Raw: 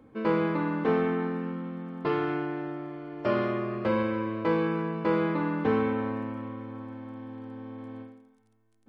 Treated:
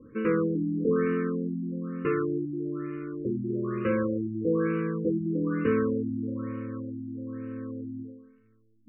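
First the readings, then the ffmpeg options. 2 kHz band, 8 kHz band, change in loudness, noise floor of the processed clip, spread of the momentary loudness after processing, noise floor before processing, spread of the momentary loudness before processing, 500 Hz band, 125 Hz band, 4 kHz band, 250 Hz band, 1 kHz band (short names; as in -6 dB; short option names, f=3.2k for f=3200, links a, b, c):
-3.5 dB, n/a, -0.5 dB, -62 dBFS, 11 LU, -66 dBFS, 15 LU, 0.0 dB, +2.0 dB, under -10 dB, +1.5 dB, -7.5 dB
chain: -filter_complex "[0:a]asplit=2[a][b];[b]acompressor=threshold=-33dB:ratio=6,volume=0dB[c];[a][c]amix=inputs=2:normalize=0,asuperstop=centerf=770:order=12:qfactor=1.4,afftfilt=real='re*lt(b*sr/1024,330*pow(3000/330,0.5+0.5*sin(2*PI*1.1*pts/sr)))':imag='im*lt(b*sr/1024,330*pow(3000/330,0.5+0.5*sin(2*PI*1.1*pts/sr)))':win_size=1024:overlap=0.75,volume=-1.5dB"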